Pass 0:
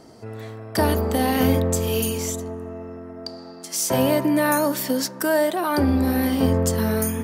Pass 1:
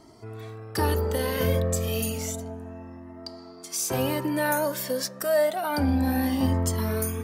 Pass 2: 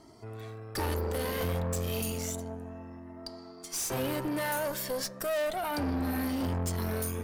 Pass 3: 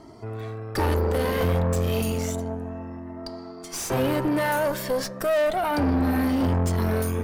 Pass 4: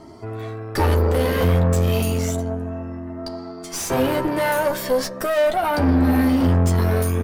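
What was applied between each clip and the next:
Shepard-style flanger rising 0.3 Hz
valve stage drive 28 dB, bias 0.6
treble shelf 3.4 kHz -9.5 dB; trim +9 dB
doubling 12 ms -6 dB; trim +3 dB

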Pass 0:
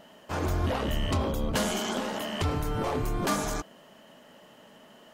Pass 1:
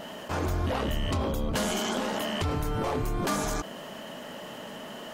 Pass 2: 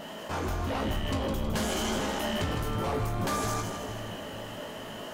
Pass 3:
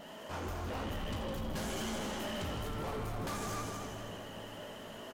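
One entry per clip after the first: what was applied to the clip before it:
level flattener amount 50%; trim -2 dB
feedback comb 54 Hz, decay 0.27 s, harmonics all, mix 80%; saturation -29 dBFS, distortion -17 dB; two-band feedback delay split 710 Hz, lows 446 ms, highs 159 ms, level -7 dB; trim +5 dB
loudspeakers at several distances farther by 12 m -11 dB, 29 m -10 dB, 86 m -6 dB; hard clipper -25 dBFS, distortion -15 dB; vibrato 15 Hz 44 cents; trim -8.5 dB

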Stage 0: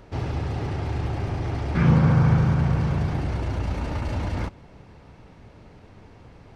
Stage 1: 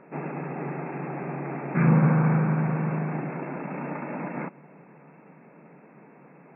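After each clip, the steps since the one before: FFT band-pass 130–2700 Hz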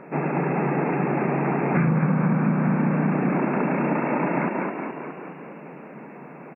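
frequency-shifting echo 209 ms, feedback 59%, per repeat +31 Hz, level -4 dB; compression 10:1, threshold -26 dBFS, peak gain reduction 12.5 dB; trim +8.5 dB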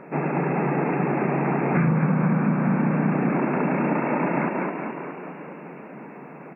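echo that smears into a reverb 519 ms, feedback 49%, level -16 dB

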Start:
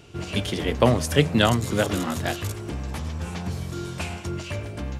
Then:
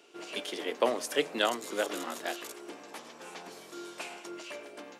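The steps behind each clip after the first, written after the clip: high-pass 320 Hz 24 dB/octave; trim -7 dB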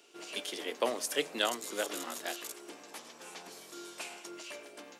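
treble shelf 3.6 kHz +8.5 dB; trim -4.5 dB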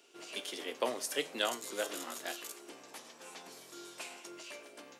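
feedback comb 130 Hz, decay 0.32 s, harmonics all, mix 60%; trim +3.5 dB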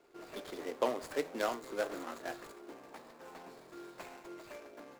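median filter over 15 samples; trim +2.5 dB

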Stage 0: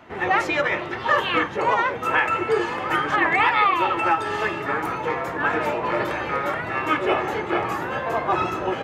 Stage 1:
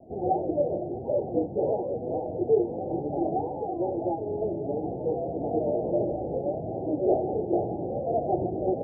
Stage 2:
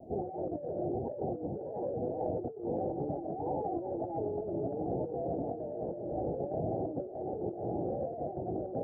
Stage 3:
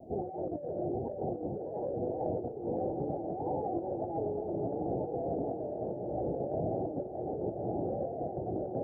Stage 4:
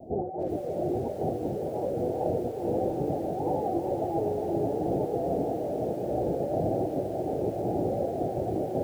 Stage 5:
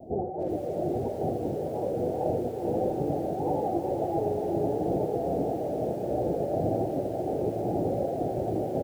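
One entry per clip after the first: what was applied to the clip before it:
steep low-pass 760 Hz 96 dB/octave
compressor with a negative ratio -33 dBFS, ratio -1; trim -3.5 dB
echo that smears into a reverb 1105 ms, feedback 57%, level -9 dB
bit-crushed delay 391 ms, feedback 55%, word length 9-bit, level -8 dB; trim +5 dB
delay 82 ms -10 dB

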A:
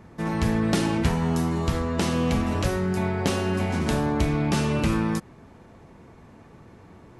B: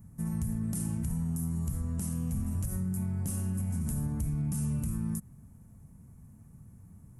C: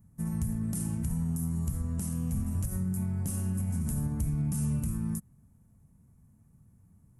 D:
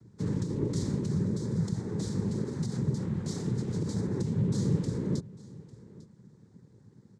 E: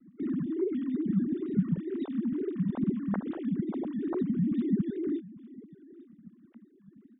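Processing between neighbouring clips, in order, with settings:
FFT filter 140 Hz 0 dB, 220 Hz -5 dB, 360 Hz -22 dB, 1.3 kHz -20 dB, 3.9 kHz -26 dB, 9.9 kHz +9 dB; peak limiter -22 dBFS, peak gain reduction 10 dB; compression, threshold -28 dBFS, peak gain reduction 3.5 dB
upward expansion 1.5:1, over -49 dBFS; trim +2.5 dB
in parallel at +1 dB: compression, threshold -39 dBFS, peak gain reduction 12 dB; on the sum: noise-vocoded speech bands 6; delay 849 ms -20 dB
formants replaced by sine waves; wow and flutter 83 cents

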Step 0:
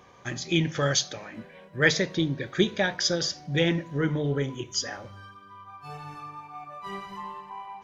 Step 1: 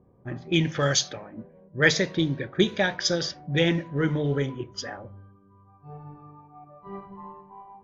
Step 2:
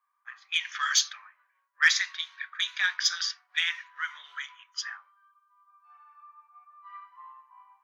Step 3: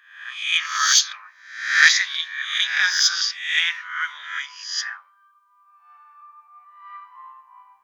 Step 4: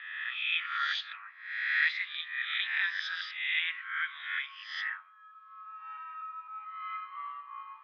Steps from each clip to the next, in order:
level-controlled noise filter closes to 310 Hz, open at -20.5 dBFS; trim +1.5 dB
Chebyshev high-pass 1.1 kHz, order 5; saturation -11.5 dBFS, distortion -20 dB; trim +2 dB
reverse spectral sustain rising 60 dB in 0.66 s; trim +5 dB
mistuned SSB +100 Hz 530–3300 Hz; three bands compressed up and down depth 70%; trim -8 dB

